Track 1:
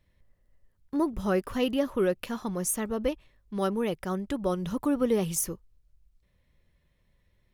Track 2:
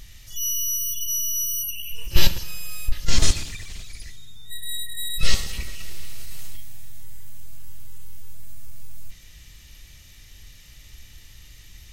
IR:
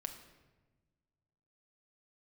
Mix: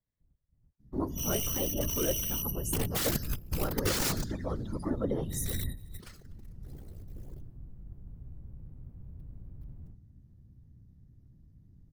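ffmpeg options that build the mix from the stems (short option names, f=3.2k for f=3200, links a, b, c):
-filter_complex "[0:a]equalizer=f=2.5k:w=5.1:g=-12.5,volume=-3.5dB,asplit=3[a][b][c];[b]volume=-9dB[d];[1:a]firequalizer=gain_entry='entry(110,0);entry(200,8);entry(350,-15);entry(770,-9);entry(1500,8);entry(2400,-13);entry(4800,-3);entry(7200,-7);entry(13000,1)':delay=0.05:min_phase=1,aeval=exprs='val(0)+0.0282*(sin(2*PI*60*n/s)+sin(2*PI*2*60*n/s)/2+sin(2*PI*3*60*n/s)/3+sin(2*PI*4*60*n/s)/4+sin(2*PI*5*60*n/s)/5)':c=same,aeval=exprs='(mod(8.41*val(0)+1,2)-1)/8.41':c=same,adelay=800,volume=-1.5dB,asplit=2[e][f];[f]volume=-21dB[g];[c]apad=whole_len=565476[h];[e][h]sidechaingate=range=-24dB:threshold=-58dB:ratio=16:detection=peak[i];[2:a]atrim=start_sample=2205[j];[d][g]amix=inputs=2:normalize=0[k];[k][j]afir=irnorm=-1:irlink=0[l];[a][i][l]amix=inputs=3:normalize=0,afftdn=nr=14:nf=-45,afftfilt=real='hypot(re,im)*cos(2*PI*random(0))':imag='hypot(re,im)*sin(2*PI*random(1))':win_size=512:overlap=0.75"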